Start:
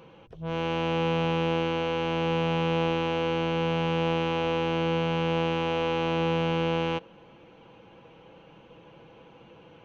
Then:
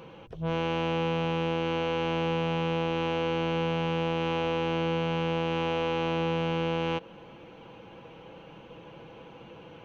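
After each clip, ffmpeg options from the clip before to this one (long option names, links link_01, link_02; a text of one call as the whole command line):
ffmpeg -i in.wav -af "acompressor=threshold=-28dB:ratio=6,volume=4dB" out.wav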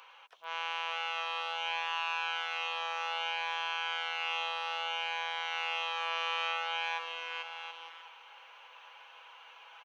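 ffmpeg -i in.wav -filter_complex "[0:a]highpass=frequency=950:width=0.5412,highpass=frequency=950:width=1.3066,asplit=2[link_01][link_02];[link_02]aecho=0:1:440|726|911.9|1033|1111:0.631|0.398|0.251|0.158|0.1[link_03];[link_01][link_03]amix=inputs=2:normalize=0" out.wav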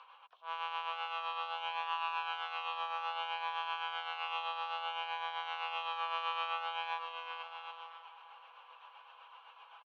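ffmpeg -i in.wav -filter_complex "[0:a]tremolo=f=7.8:d=0.46,highpass=frequency=400:width=0.5412,highpass=frequency=400:width=1.3066,equalizer=frequency=750:width_type=q:width=4:gain=4,equalizer=frequency=1100:width_type=q:width=4:gain=9,equalizer=frequency=2000:width_type=q:width=4:gain=-7,lowpass=frequency=4400:width=0.5412,lowpass=frequency=4400:width=1.3066,asplit=2[link_01][link_02];[link_02]adelay=1341,volume=-19dB,highshelf=frequency=4000:gain=-30.2[link_03];[link_01][link_03]amix=inputs=2:normalize=0,volume=-3.5dB" out.wav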